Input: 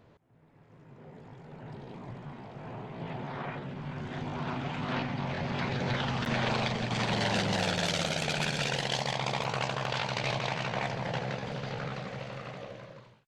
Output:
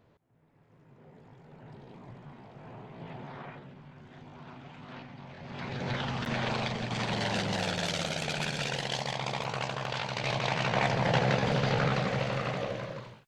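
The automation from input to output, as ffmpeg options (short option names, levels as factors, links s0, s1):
-af "volume=7.08,afade=t=out:st=3.28:d=0.63:silence=0.398107,afade=t=in:st=5.39:d=0.53:silence=0.281838,afade=t=in:st=10.15:d=1.3:silence=0.281838"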